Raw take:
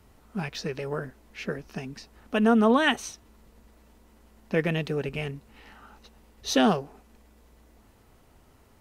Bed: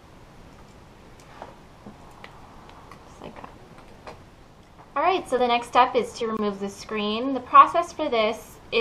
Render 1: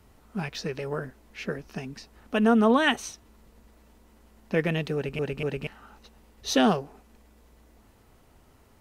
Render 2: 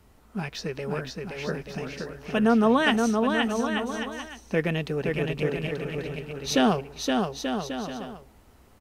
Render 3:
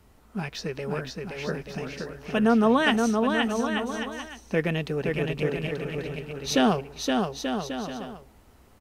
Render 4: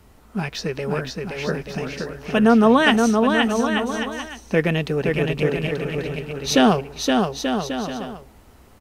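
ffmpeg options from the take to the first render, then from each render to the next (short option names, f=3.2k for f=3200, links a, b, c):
-filter_complex "[0:a]asplit=4[a][b][c][d];[a]atrim=end=5.192[e];[b]atrim=start=4.948:end=5.192[f];[c]atrim=start=4.948:end=5.192[g];[d]atrim=start=5.668[h];[e][f]acrossfade=d=0.004:c1=hsin:c2=hsin[i];[i][g]acrossfade=d=0.004:c1=hsin:c2=hsin[j];[j][h]acrossfade=d=0.004:c1=hsin:c2=hsin"
-af "aecho=1:1:520|884|1139|1317|1442:0.631|0.398|0.251|0.158|0.1"
-af anull
-af "volume=6dB"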